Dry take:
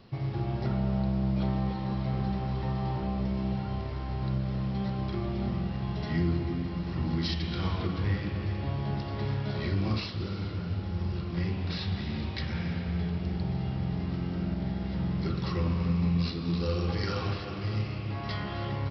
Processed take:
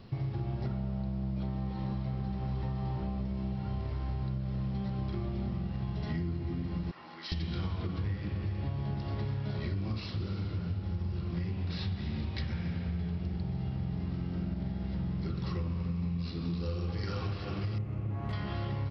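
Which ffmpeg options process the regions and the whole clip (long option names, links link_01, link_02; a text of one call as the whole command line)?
ffmpeg -i in.wav -filter_complex "[0:a]asettb=1/sr,asplit=3[link_01][link_02][link_03];[link_01]atrim=end=6.914[link_04];[link_02]atrim=start=6.91:end=7.32,asetpts=PTS-STARTPTS,afade=type=in:duration=0.004:curve=qsin,afade=type=out:start_time=0.406:duration=0.004:curve=qsin,highpass=1000,highshelf=frequency=2100:gain=-9.5[link_05];[link_03]atrim=start=7.316[link_06];[link_04][link_05]acrossfade=duration=0.004:curve1=hsin:curve2=qsin[link_07];[link_07][link_06]acrossfade=duration=0.004:curve1=qsin:curve2=hsin,asettb=1/sr,asplit=3[link_08][link_09][link_10];[link_08]atrim=end=17.784[link_11];[link_09]atrim=start=17.78:end=18.33,asetpts=PTS-STARTPTS,afade=type=in:duration=0.004:curve=qsin,afade=type=out:start_time=0.546:duration=0.004:curve=qsin,highshelf=frequency=4300:gain=-9,adynamicsmooth=sensitivity=4.5:basefreq=1300[link_12];[link_10]atrim=start=18.326[link_13];[link_11][link_12]acrossfade=duration=0.004:curve1=hsin:curve2=qsin[link_14];[link_14][link_13]acrossfade=duration=0.004:curve1=qsin:curve2=hsin,lowshelf=frequency=190:gain=7,acompressor=threshold=-31dB:ratio=6" out.wav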